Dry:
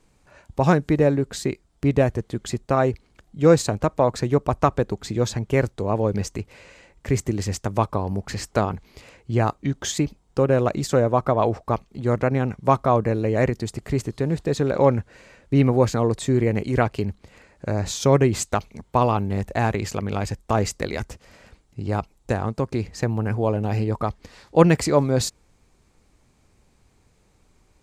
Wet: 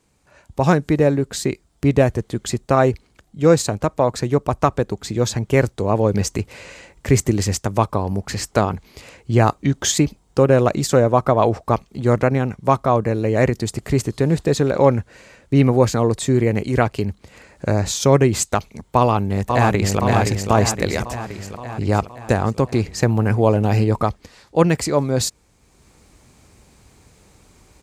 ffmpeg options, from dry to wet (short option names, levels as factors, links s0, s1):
-filter_complex "[0:a]asplit=2[s0][s1];[s1]afade=t=in:st=18.97:d=0.01,afade=t=out:st=20.01:d=0.01,aecho=0:1:520|1040|1560|2080|2600|3120|3640|4160:0.562341|0.337405|0.202443|0.121466|0.0728794|0.0437277|0.0262366|0.015742[s2];[s0][s2]amix=inputs=2:normalize=0,dynaudnorm=f=320:g=3:m=3.76,highpass=40,highshelf=f=5400:g=5,volume=0.841"